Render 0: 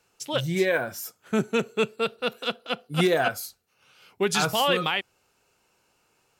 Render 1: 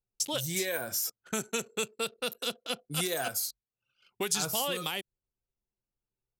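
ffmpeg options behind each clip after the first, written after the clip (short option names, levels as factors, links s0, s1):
-filter_complex "[0:a]anlmdn=0.01,bass=f=250:g=-1,treble=f=4000:g=15,acrossover=split=600|6200[s0][s1][s2];[s0]acompressor=threshold=0.0141:ratio=4[s3];[s1]acompressor=threshold=0.0178:ratio=4[s4];[s2]acompressor=threshold=0.02:ratio=4[s5];[s3][s4][s5]amix=inputs=3:normalize=0"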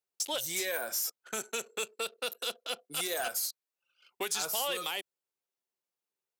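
-filter_complex "[0:a]highpass=440,asplit=2[s0][s1];[s1]alimiter=limit=0.0631:level=0:latency=1:release=85,volume=1.12[s2];[s0][s2]amix=inputs=2:normalize=0,asoftclip=type=tanh:threshold=0.106,volume=0.596"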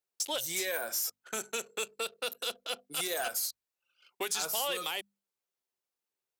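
-af "bandreject=f=50:t=h:w=6,bandreject=f=100:t=h:w=6,bandreject=f=150:t=h:w=6,bandreject=f=200:t=h:w=6,bandreject=f=250:t=h:w=6"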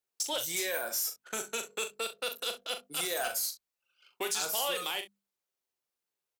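-af "aecho=1:1:40|65:0.398|0.158"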